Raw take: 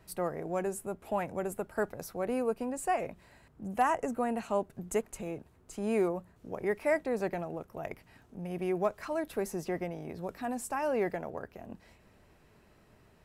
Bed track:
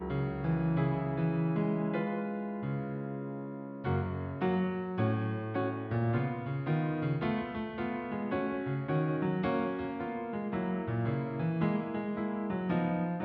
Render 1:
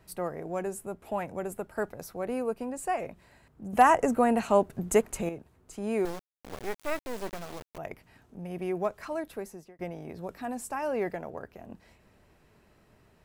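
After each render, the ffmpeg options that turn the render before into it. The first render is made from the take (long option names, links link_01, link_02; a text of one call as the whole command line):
ffmpeg -i in.wav -filter_complex "[0:a]asettb=1/sr,asplit=3[link_01][link_02][link_03];[link_01]atrim=end=6.054[link_04];[link_02]atrim=start=6.05:end=7.78,asetpts=PTS-STARTPTS,afade=type=in:duration=0.004:curve=qsin,afade=type=out:start_time=1.726:duration=0.004:curve=qsin,acrusher=bits=4:dc=4:mix=0:aa=0.000001[link_05];[link_03]atrim=start=7.776[link_06];[link_04][link_05]acrossfade=duration=0.004:curve1=hsin:curve2=qsin[link_07];[link_07][link_06]acrossfade=duration=0.004:curve1=qsin:curve2=hsin,asplit=4[link_08][link_09][link_10][link_11];[link_08]atrim=end=3.732[link_12];[link_09]atrim=start=3.728:end=5.292,asetpts=PTS-STARTPTS,volume=8dB[link_13];[link_10]atrim=start=5.288:end=9.79,asetpts=PTS-STARTPTS,afade=type=out:start_time=3.862:duration=0.64[link_14];[link_11]atrim=start=9.79,asetpts=PTS-STARTPTS,afade=type=in:duration=0.004:curve=hsin[link_15];[link_12][link_13]acrossfade=duration=0.004:curve1=hsin:curve2=hsin[link_16];[link_14][link_15]concat=n=2:v=0:a=1[link_17];[link_16][link_17]acrossfade=duration=0.004:curve1=hsin:curve2=hsin" out.wav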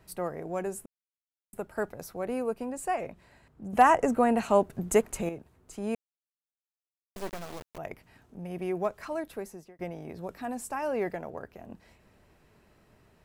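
ffmpeg -i in.wav -filter_complex "[0:a]asettb=1/sr,asplit=3[link_01][link_02][link_03];[link_01]atrim=end=2.954[link_04];[link_02]atrim=start=2.95:end=4.39,asetpts=PTS-STARTPTS,afade=type=in:duration=0.004:curve=qsin,afade=type=out:start_time=1.436:duration=0.004:curve=qsin,highshelf=frequency=9500:gain=-6[link_05];[link_03]atrim=start=4.386[link_06];[link_04][link_05]acrossfade=duration=0.004:curve1=hsin:curve2=qsin[link_07];[link_07][link_06]acrossfade=duration=0.004:curve1=qsin:curve2=hsin,asplit=5[link_08][link_09][link_10][link_11][link_12];[link_08]atrim=end=0.86,asetpts=PTS-STARTPTS,afade=type=out:start_time=0.856:duration=0.004:curve=hsin[link_13];[link_09]atrim=start=0.86:end=1.53,asetpts=PTS-STARTPTS,volume=0[link_14];[link_10]atrim=start=1.53:end=5.95,asetpts=PTS-STARTPTS,afade=type=in:duration=0.004:curve=hsin,afade=type=out:start_time=4.416:duration=0.004:curve=hsin[link_15];[link_11]atrim=start=5.95:end=7.16,asetpts=PTS-STARTPTS,volume=0[link_16];[link_12]atrim=start=7.16,asetpts=PTS-STARTPTS,afade=type=in:duration=0.004:curve=hsin[link_17];[link_13][link_14][link_15][link_16][link_17]concat=n=5:v=0:a=1" out.wav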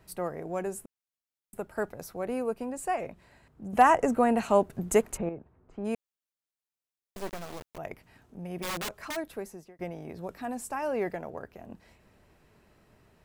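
ffmpeg -i in.wav -filter_complex "[0:a]asplit=3[link_01][link_02][link_03];[link_01]afade=type=out:start_time=5.16:duration=0.02[link_04];[link_02]lowpass=1500,afade=type=in:start_time=5.16:duration=0.02,afade=type=out:start_time=5.84:duration=0.02[link_05];[link_03]afade=type=in:start_time=5.84:duration=0.02[link_06];[link_04][link_05][link_06]amix=inputs=3:normalize=0,asplit=3[link_07][link_08][link_09];[link_07]afade=type=out:start_time=8.62:duration=0.02[link_10];[link_08]aeval=exprs='(mod(28.2*val(0)+1,2)-1)/28.2':channel_layout=same,afade=type=in:start_time=8.62:duration=0.02,afade=type=out:start_time=9.15:duration=0.02[link_11];[link_09]afade=type=in:start_time=9.15:duration=0.02[link_12];[link_10][link_11][link_12]amix=inputs=3:normalize=0" out.wav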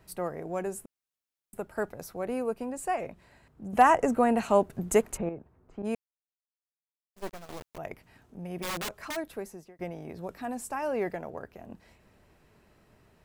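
ffmpeg -i in.wav -filter_complex "[0:a]asettb=1/sr,asplit=3[link_01][link_02][link_03];[link_01]atrim=end=5.824[link_04];[link_02]atrim=start=5.82:end=7.49,asetpts=PTS-STARTPTS,afade=type=in:duration=0.004:curve=qsin,afade=type=out:start_time=1.666:duration=0.004:curve=qsin,agate=range=-33dB:threshold=-34dB:ratio=3:release=100:detection=peak[link_05];[link_03]atrim=start=7.486[link_06];[link_04][link_05]acrossfade=duration=0.004:curve1=hsin:curve2=qsin[link_07];[link_07][link_06]acrossfade=duration=0.004:curve1=qsin:curve2=hsin" out.wav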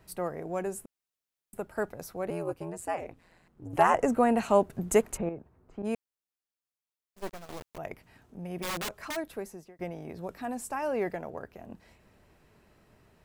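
ffmpeg -i in.wav -filter_complex "[0:a]asettb=1/sr,asplit=3[link_01][link_02][link_03];[link_01]atrim=end=2.304[link_04];[link_02]atrim=start=2.3:end=3.94,asetpts=PTS-STARTPTS,afade=type=in:duration=0.004:curve=qsin,afade=type=out:start_time=1.636:duration=0.004:curve=qsin,aeval=exprs='val(0)*sin(2*PI*86*n/s)':channel_layout=same[link_05];[link_03]atrim=start=3.936[link_06];[link_04][link_05]acrossfade=duration=0.004:curve1=hsin:curve2=qsin[link_07];[link_07][link_06]acrossfade=duration=0.004:curve1=qsin:curve2=hsin" out.wav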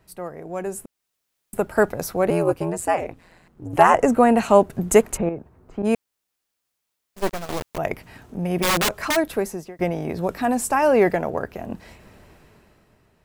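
ffmpeg -i in.wav -af "dynaudnorm=framelen=110:gausssize=17:maxgain=14dB" out.wav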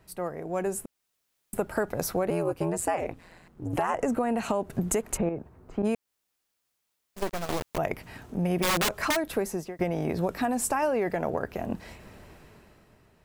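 ffmpeg -i in.wav -af "alimiter=limit=-13dB:level=0:latency=1:release=166,acompressor=threshold=-23dB:ratio=6" out.wav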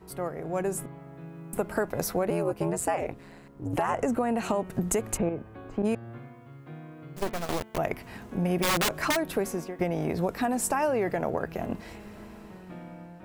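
ffmpeg -i in.wav -i bed.wav -filter_complex "[1:a]volume=-12.5dB[link_01];[0:a][link_01]amix=inputs=2:normalize=0" out.wav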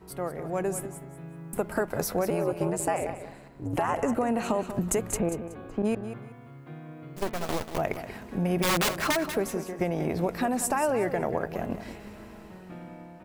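ffmpeg -i in.wav -af "aecho=1:1:187|374|561:0.282|0.0705|0.0176" out.wav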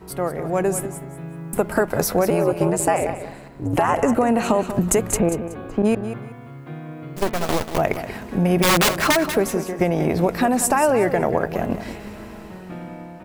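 ffmpeg -i in.wav -af "volume=8.5dB" out.wav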